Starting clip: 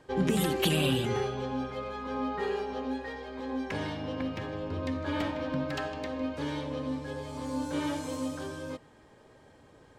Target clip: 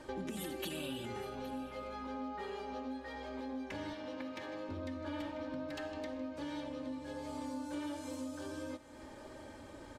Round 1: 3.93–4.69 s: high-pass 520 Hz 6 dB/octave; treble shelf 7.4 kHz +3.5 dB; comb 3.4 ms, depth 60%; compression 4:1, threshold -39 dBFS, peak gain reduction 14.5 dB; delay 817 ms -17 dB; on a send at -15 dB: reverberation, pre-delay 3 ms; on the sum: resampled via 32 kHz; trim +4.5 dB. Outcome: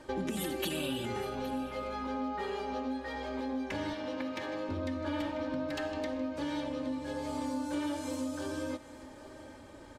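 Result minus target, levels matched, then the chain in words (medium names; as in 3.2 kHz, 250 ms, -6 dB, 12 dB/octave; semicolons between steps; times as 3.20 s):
compression: peak gain reduction -6.5 dB
3.93–4.69 s: high-pass 520 Hz 6 dB/octave; treble shelf 7.4 kHz +3.5 dB; comb 3.4 ms, depth 60%; compression 4:1, threshold -47.5 dBFS, peak gain reduction 21 dB; delay 817 ms -17 dB; on a send at -15 dB: reverberation, pre-delay 3 ms; on the sum: resampled via 32 kHz; trim +4.5 dB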